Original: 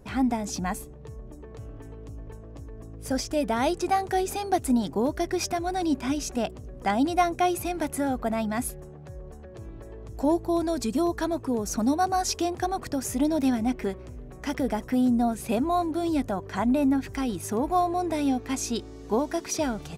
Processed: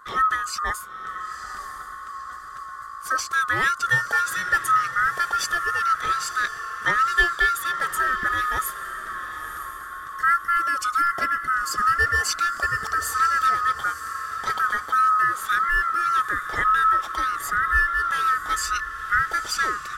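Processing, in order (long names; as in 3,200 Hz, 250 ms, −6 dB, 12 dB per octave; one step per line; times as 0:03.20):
neighbouring bands swapped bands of 1,000 Hz
feedback delay with all-pass diffusion 959 ms, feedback 42%, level −11 dB
level +3 dB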